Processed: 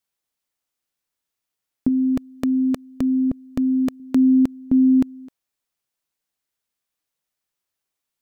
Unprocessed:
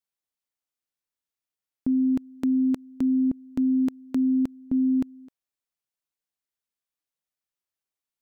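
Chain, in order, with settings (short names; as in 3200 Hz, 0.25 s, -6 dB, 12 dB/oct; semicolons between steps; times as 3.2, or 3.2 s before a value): 1.88–4 comb 1.7 ms, depth 50%; gain +7.5 dB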